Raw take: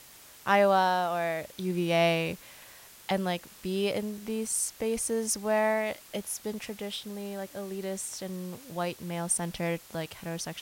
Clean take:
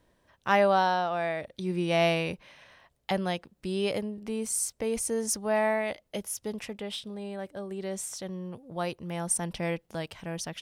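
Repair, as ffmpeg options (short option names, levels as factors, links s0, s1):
-af "adeclick=t=4,afftdn=nr=14:nf=-52"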